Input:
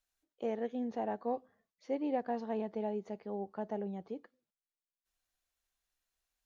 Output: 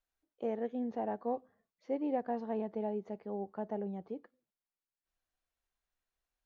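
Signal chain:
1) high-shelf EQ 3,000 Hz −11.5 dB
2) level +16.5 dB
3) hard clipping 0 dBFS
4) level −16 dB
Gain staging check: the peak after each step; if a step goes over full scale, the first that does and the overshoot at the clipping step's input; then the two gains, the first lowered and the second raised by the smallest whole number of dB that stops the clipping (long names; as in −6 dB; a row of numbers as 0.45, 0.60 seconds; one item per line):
−22.5, −6.0, −6.0, −22.0 dBFS
no step passes full scale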